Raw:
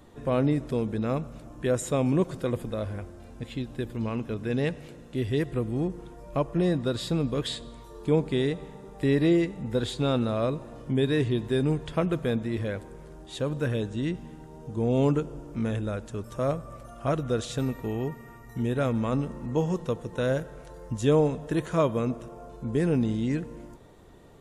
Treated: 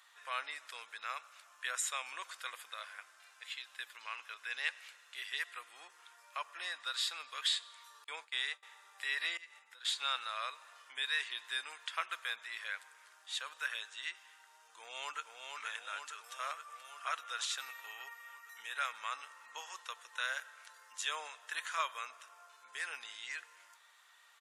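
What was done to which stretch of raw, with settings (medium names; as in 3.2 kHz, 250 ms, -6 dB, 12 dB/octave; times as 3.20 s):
8.04–8.63 s: expander -28 dBFS
9.37–9.85 s: compression 12:1, threshold -37 dBFS
14.78–15.38 s: echo throw 470 ms, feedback 70%, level -4 dB
whole clip: high-pass 1.3 kHz 24 dB/octave; treble shelf 7.8 kHz -5 dB; trim +2.5 dB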